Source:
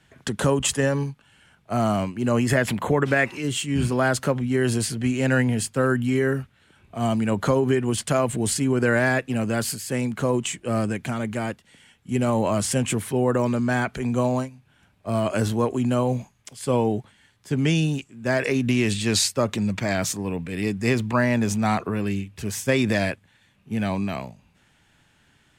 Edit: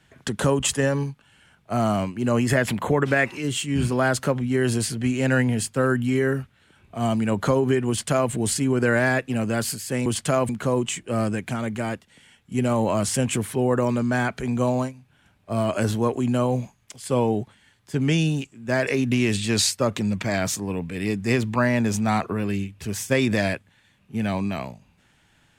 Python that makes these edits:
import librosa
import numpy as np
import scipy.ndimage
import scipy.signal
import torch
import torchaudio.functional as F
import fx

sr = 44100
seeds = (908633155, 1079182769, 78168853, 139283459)

y = fx.edit(x, sr, fx.duplicate(start_s=7.88, length_s=0.43, to_s=10.06), tone=tone)